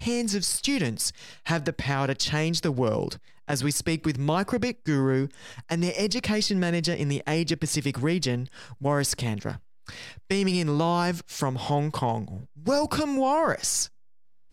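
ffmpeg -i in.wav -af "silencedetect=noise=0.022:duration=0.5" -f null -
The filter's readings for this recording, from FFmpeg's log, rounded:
silence_start: 13.85
silence_end: 14.52 | silence_duration: 0.67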